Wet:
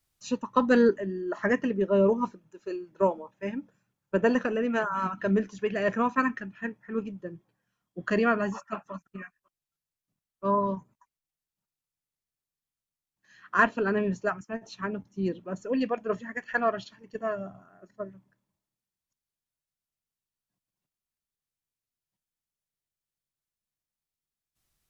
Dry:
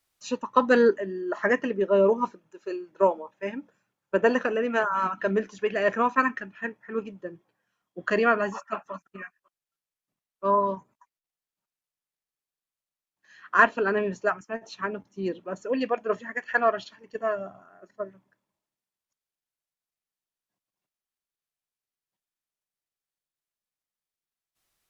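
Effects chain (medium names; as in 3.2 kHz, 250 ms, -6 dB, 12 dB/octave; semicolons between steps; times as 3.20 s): tone controls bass +12 dB, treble +3 dB; trim -4 dB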